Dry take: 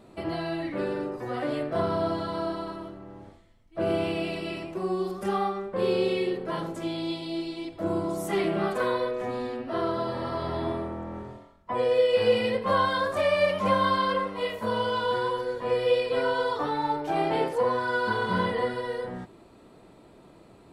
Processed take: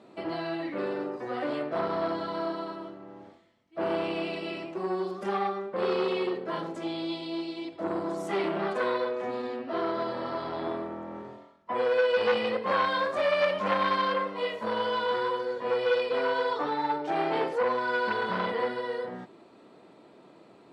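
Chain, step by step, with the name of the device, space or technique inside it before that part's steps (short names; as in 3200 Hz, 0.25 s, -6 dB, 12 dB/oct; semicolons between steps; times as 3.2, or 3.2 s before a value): public-address speaker with an overloaded transformer (core saturation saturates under 1200 Hz; BPF 210–5900 Hz)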